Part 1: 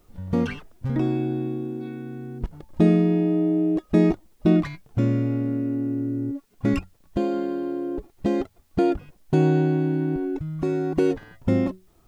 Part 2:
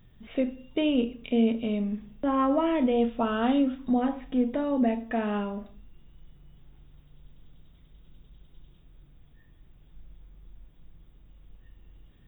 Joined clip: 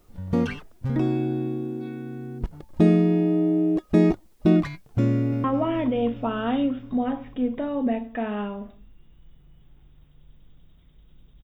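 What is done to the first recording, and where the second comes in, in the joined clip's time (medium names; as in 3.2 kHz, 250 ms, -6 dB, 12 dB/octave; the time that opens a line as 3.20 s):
part 1
5.11–5.44 s: echo throw 210 ms, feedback 80%, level -9.5 dB
5.44 s: go over to part 2 from 2.40 s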